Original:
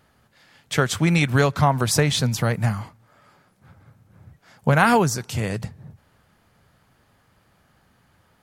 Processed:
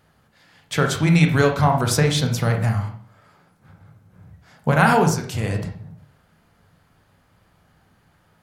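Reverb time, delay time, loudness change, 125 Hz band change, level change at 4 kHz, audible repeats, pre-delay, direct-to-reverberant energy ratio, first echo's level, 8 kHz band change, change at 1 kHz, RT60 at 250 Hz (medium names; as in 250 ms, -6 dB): 0.50 s, no echo, +1.5 dB, +2.0 dB, -0.5 dB, no echo, 22 ms, 3.5 dB, no echo, -1.0 dB, +1.0 dB, 0.60 s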